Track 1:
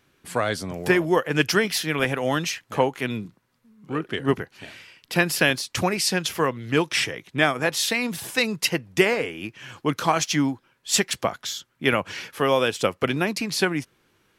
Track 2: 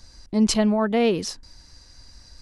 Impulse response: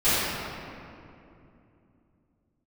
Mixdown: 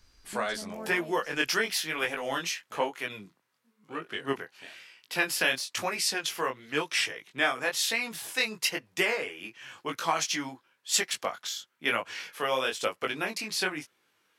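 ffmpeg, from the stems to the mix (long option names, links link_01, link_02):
-filter_complex "[0:a]highpass=frequency=730:poles=1,flanger=delay=17.5:depth=6.1:speed=1,volume=-1dB,asplit=2[link_01][link_02];[1:a]acompressor=threshold=-21dB:ratio=6,volume=-14.5dB[link_03];[link_02]apad=whole_len=106567[link_04];[link_03][link_04]sidechaincompress=threshold=-32dB:ratio=8:attack=16:release=583[link_05];[link_01][link_05]amix=inputs=2:normalize=0"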